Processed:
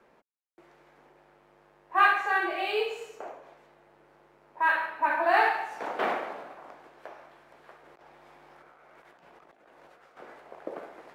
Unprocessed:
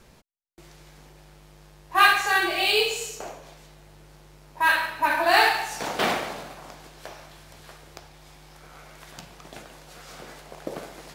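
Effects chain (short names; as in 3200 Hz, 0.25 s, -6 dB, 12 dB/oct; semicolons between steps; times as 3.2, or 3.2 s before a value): three-band isolator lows -23 dB, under 260 Hz, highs -20 dB, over 2200 Hz; 7.83–10.17 negative-ratio compressor -54 dBFS, ratio -1; gain -2.5 dB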